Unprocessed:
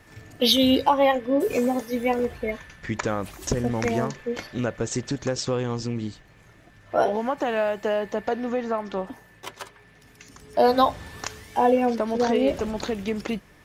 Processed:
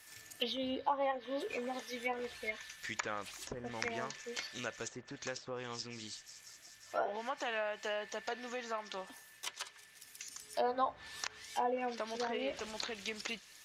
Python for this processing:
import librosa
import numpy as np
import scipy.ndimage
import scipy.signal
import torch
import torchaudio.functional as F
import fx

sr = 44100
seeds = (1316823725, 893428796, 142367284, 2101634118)

y = scipy.signal.lfilter([1.0, -0.97], [1.0], x)
y = fx.echo_wet_highpass(y, sr, ms=180, feedback_pct=83, hz=3500.0, wet_db=-21.0)
y = fx.env_lowpass_down(y, sr, base_hz=1100.0, full_db=-35.0)
y = F.gain(torch.from_numpy(y), 6.0).numpy()